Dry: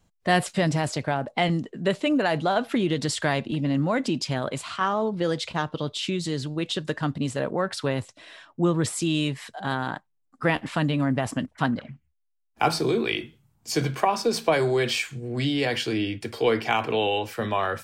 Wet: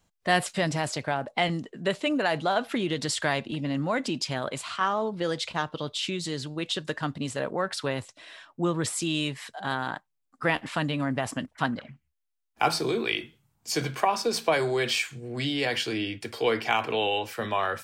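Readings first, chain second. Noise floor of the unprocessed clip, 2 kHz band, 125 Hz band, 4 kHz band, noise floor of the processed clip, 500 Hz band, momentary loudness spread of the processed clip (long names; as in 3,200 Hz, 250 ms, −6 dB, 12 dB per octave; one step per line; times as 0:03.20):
−71 dBFS, −0.5 dB, −6.0 dB, 0.0 dB, −77 dBFS, −3.0 dB, 7 LU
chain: low-shelf EQ 470 Hz −6.5 dB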